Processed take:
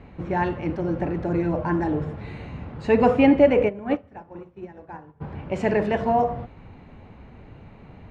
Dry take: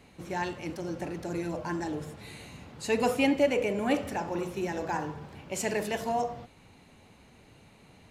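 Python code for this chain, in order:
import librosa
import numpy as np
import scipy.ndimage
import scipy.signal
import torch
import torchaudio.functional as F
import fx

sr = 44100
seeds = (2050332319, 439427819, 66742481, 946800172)

y = scipy.signal.sosfilt(scipy.signal.butter(2, 1800.0, 'lowpass', fs=sr, output='sos'), x)
y = fx.low_shelf(y, sr, hz=100.0, db=10.5)
y = fx.upward_expand(y, sr, threshold_db=-38.0, expansion=2.5, at=(3.68, 5.2), fade=0.02)
y = y * librosa.db_to_amplitude(8.5)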